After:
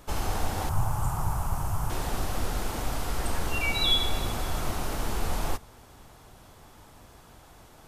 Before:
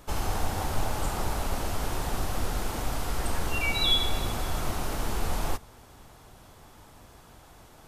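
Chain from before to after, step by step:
0:00.69–0:01.90: octave-band graphic EQ 125/250/500/1,000/2,000/4,000 Hz +12/−9/−10/+7/−8/−12 dB

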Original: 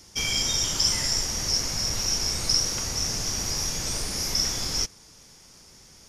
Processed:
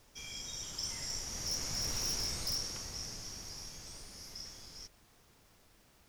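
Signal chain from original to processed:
source passing by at 0:01.99, 6 m/s, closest 3 metres
wave folding −21 dBFS
background noise pink −57 dBFS
level −8 dB

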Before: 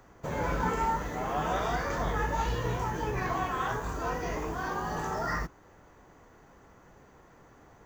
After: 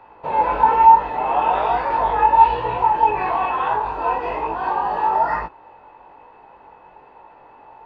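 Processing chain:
drawn EQ curve 180 Hz 0 dB, 510 Hz +13 dB, 1,300 Hz +11 dB, 4,300 Hz +15 dB, 6,200 Hz −3 dB
chorus effect 1.1 Hz, delay 18 ms, depth 3.8 ms
head-to-tape spacing loss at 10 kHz 24 dB
hollow resonant body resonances 890/2,600 Hz, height 17 dB, ringing for 30 ms
level −1 dB

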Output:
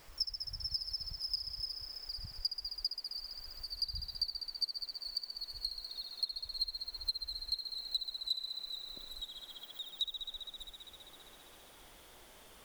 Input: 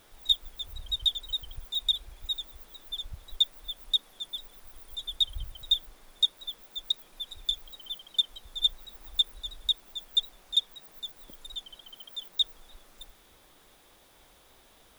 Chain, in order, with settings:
gliding playback speed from 144% → 93%
feedback echo with a high-pass in the loop 66 ms, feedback 83%, high-pass 220 Hz, level −8.5 dB
downward compressor 1.5 to 1, threshold −54 dBFS, peak gain reduction 12.5 dB
level +1 dB

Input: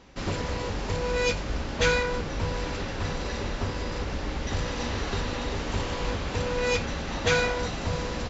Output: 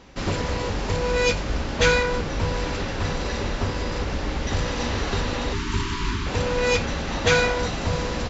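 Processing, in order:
time-frequency box erased 0:05.53–0:06.26, 410–880 Hz
level +4.5 dB

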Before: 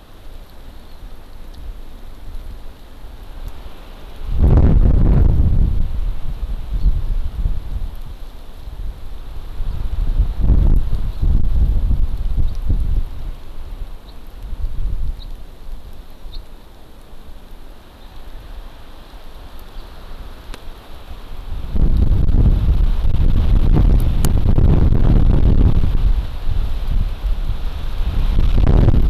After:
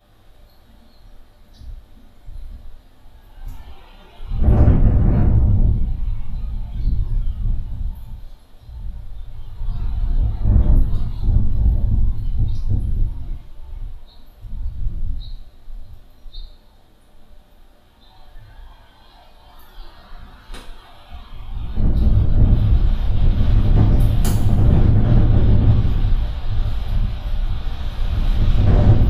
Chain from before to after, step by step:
noise reduction from a noise print of the clip's start 10 dB
coupled-rooms reverb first 0.45 s, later 1.6 s, from −18 dB, DRR −10 dB
level −11.5 dB

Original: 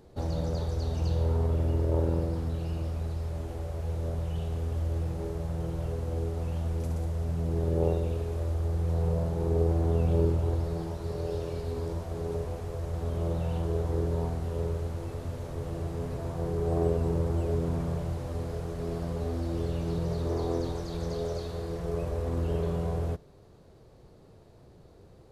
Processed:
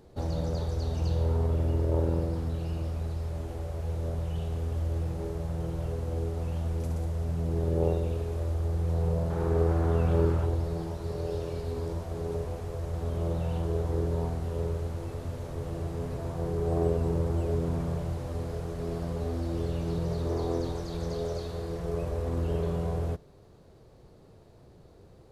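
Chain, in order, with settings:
0:09.30–0:10.46: parametric band 1,400 Hz +10 dB 1.2 octaves

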